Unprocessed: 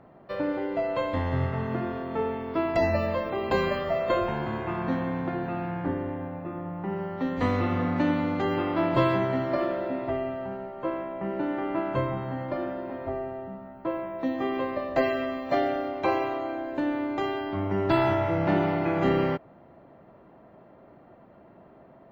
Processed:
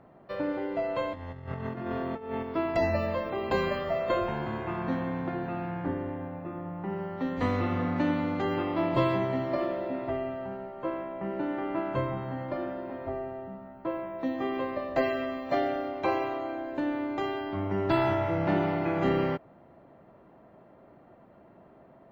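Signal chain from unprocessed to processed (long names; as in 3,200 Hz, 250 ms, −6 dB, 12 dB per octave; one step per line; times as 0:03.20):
0:01.13–0:02.43: compressor whose output falls as the input rises −32 dBFS, ratio −0.5
0:08.63–0:09.94: parametric band 1,500 Hz −9 dB 0.22 octaves
level −2.5 dB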